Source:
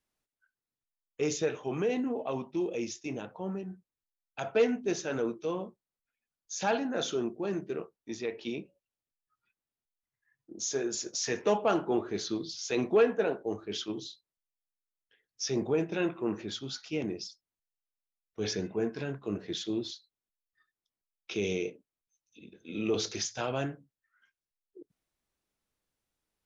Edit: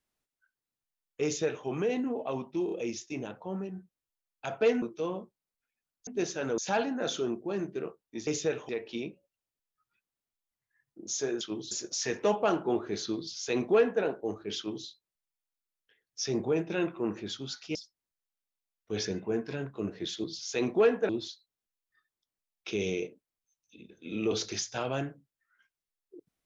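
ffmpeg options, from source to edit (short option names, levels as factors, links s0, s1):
-filter_complex "[0:a]asplit=13[s0][s1][s2][s3][s4][s5][s6][s7][s8][s9][s10][s11][s12];[s0]atrim=end=2.682[s13];[s1]atrim=start=2.648:end=2.682[s14];[s2]atrim=start=2.648:end=4.762[s15];[s3]atrim=start=5.268:end=6.522[s16];[s4]atrim=start=4.758:end=5.272[s17];[s5]atrim=start=6.518:end=8.212[s18];[s6]atrim=start=1.238:end=1.662[s19];[s7]atrim=start=8.208:end=10.932[s20];[s8]atrim=start=13.788:end=14.092[s21];[s9]atrim=start=10.928:end=16.972[s22];[s10]atrim=start=17.228:end=19.722[s23];[s11]atrim=start=12.398:end=13.252[s24];[s12]atrim=start=19.718[s25];[s13][s14]acrossfade=d=0.004:c1=hsin:c2=hsin[s26];[s26][s15]acrossfade=d=0.004:c1=hsin:c2=hsin[s27];[s27][s16]acrossfade=d=0.004:c1=hsin:c2=hsin[s28];[s28][s17]acrossfade=d=0.004:c1=hsin:c2=hsin[s29];[s29][s18]acrossfade=d=0.004:c1=hsin:c2=hsin[s30];[s30][s19]acrossfade=d=0.004:c1=hsin:c2=hsin[s31];[s31][s20]acrossfade=d=0.004:c1=hsin:c2=hsin[s32];[s32][s21]acrossfade=d=0.004:c1=hsin:c2=hsin[s33];[s33][s22]acrossfade=d=0.004:c1=hsin:c2=hsin[s34];[s34][s23]acrossfade=d=0.004:c1=hsin:c2=hsin[s35];[s35][s24]acrossfade=d=0.004:c1=hsin:c2=hsin[s36];[s36][s25]acrossfade=d=0.004:c1=hsin:c2=hsin"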